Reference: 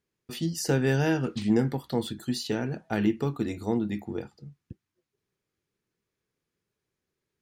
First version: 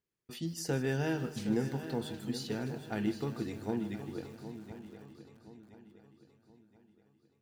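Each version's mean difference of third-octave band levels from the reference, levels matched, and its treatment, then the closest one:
6.5 dB: feedback echo with a long and a short gap by turns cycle 1,023 ms, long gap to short 3 to 1, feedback 38%, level −11.5 dB
feedback echo at a low word length 155 ms, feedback 55%, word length 7 bits, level −14 dB
level −8 dB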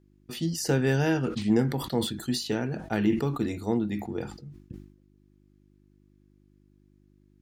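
2.0 dB: hum with harmonics 50 Hz, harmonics 7, −63 dBFS −2 dB per octave
level that may fall only so fast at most 94 dB per second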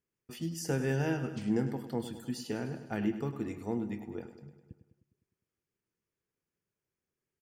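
3.5 dB: parametric band 3,900 Hz −13 dB 0.28 octaves
on a send: repeating echo 102 ms, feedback 60%, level −12 dB
on the sum: level −7 dB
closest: second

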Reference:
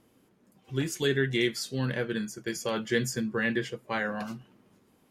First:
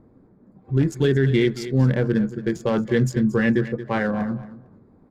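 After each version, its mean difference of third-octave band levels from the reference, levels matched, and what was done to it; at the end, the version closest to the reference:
6.5 dB: adaptive Wiener filter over 15 samples
spectral tilt −2.5 dB per octave
repeating echo 227 ms, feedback 18%, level −15 dB
boost into a limiter +14.5 dB
level −8 dB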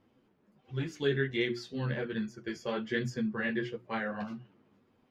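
4.0 dB: high-shelf EQ 7,600 Hz +11 dB
mains-hum notches 60/120/180/240/300/360 Hz
multi-voice chorus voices 2, 1.3 Hz, delay 11 ms, depth 3.1 ms
high-frequency loss of the air 240 metres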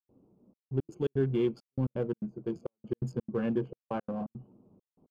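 11.0 dB: adaptive Wiener filter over 25 samples
moving average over 23 samples
gate pattern ".xxxxx..x.xx" 169 BPM −60 dB
in parallel at −10.5 dB: gain into a clipping stage and back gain 35 dB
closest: second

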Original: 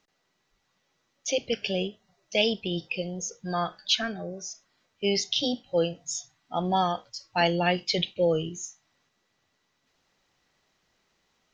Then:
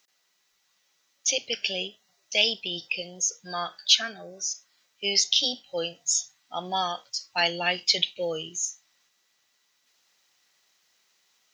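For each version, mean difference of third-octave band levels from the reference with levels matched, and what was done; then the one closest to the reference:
5.0 dB: spectral tilt +4 dB per octave
level −2 dB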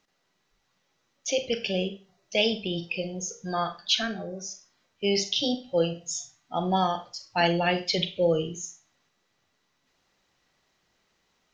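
2.0 dB: four-comb reverb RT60 0.33 s, combs from 32 ms, DRR 9.5 dB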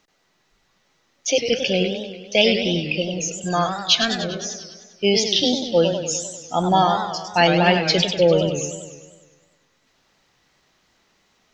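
7.0 dB: feedback echo with a swinging delay time 99 ms, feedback 62%, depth 185 cents, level −7.5 dB
level +7.5 dB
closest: second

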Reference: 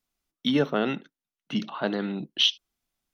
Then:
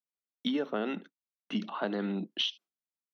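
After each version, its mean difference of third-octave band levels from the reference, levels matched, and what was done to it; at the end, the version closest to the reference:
3.0 dB: elliptic high-pass filter 180 Hz, stop band 40 dB
noise gate with hold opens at −39 dBFS
high-shelf EQ 4,800 Hz −8.5 dB
downward compressor, threshold −28 dBFS, peak gain reduction 9.5 dB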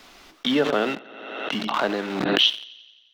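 8.5 dB: feedback echo with a high-pass in the loop 88 ms, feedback 66%, high-pass 200 Hz, level −15.5 dB
in parallel at −3 dB: bit reduction 5 bits
on the sum: three-way crossover with the lows and the highs turned down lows −13 dB, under 270 Hz, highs −18 dB, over 5,100 Hz
background raised ahead of every attack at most 39 dB per second
level −1 dB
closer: first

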